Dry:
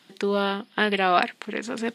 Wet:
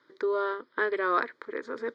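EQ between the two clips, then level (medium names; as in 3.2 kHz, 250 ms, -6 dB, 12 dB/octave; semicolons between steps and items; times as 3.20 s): distance through air 270 m; bass shelf 150 Hz -9 dB; static phaser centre 740 Hz, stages 6; 0.0 dB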